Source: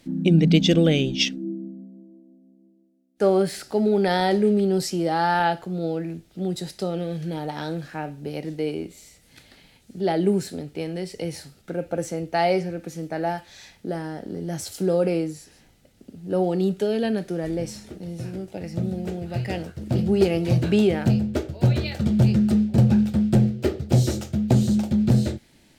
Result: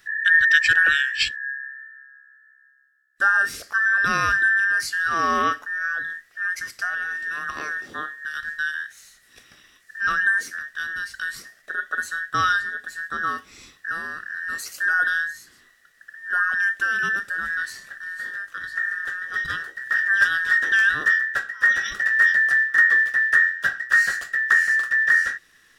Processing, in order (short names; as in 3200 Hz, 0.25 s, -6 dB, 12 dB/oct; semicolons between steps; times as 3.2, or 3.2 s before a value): band inversion scrambler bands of 2000 Hz